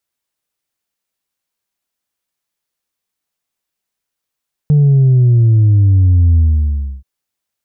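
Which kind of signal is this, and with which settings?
sub drop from 150 Hz, over 2.33 s, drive 1.5 dB, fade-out 0.66 s, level -6.5 dB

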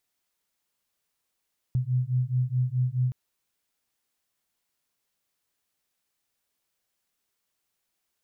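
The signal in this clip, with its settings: beating tones 124 Hz, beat 4.7 Hz, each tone -26 dBFS 1.37 s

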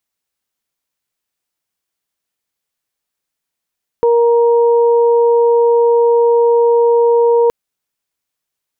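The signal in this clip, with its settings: steady additive tone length 3.47 s, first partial 470 Hz, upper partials -10 dB, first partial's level -8 dB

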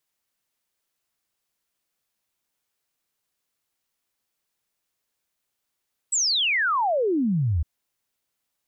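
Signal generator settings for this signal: log sweep 8100 Hz -> 72 Hz 1.51 s -19.5 dBFS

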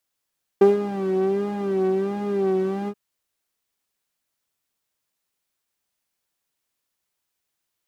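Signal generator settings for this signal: synth patch with vibrato G4, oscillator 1 saw, interval 0 st, detune 7 cents, oscillator 2 level -2.5 dB, sub -9.5 dB, noise -5 dB, filter bandpass, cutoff 240 Hz, Q 1.4, filter envelope 0.5 oct, attack 6.9 ms, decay 0.15 s, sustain -8 dB, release 0.06 s, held 2.27 s, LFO 1.4 Hz, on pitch 74 cents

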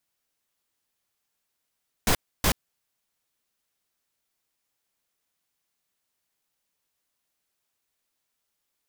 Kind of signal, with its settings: noise bursts pink, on 0.08 s, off 0.29 s, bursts 2, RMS -21 dBFS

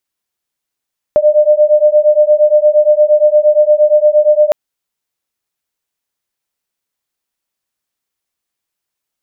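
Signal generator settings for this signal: beating tones 598 Hz, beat 8.6 Hz, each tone -9 dBFS 3.36 s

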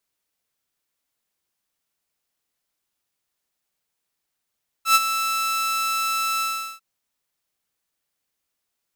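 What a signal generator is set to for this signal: ADSR saw 1320 Hz, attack 0.101 s, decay 36 ms, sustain -10.5 dB, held 1.56 s, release 0.387 s -8.5 dBFS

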